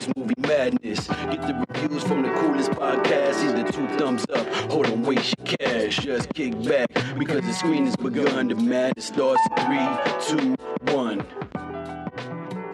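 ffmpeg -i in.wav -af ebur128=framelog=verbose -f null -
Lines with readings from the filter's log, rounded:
Integrated loudness:
  I:         -23.8 LUFS
  Threshold: -33.8 LUFS
Loudness range:
  LRA:         1.5 LU
  Threshold: -43.4 LUFS
  LRA low:   -24.1 LUFS
  LRA high:  -22.5 LUFS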